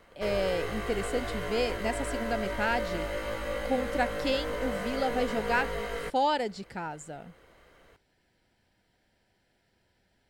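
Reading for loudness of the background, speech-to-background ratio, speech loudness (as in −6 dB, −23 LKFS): −34.5 LKFS, 2.5 dB, −32.0 LKFS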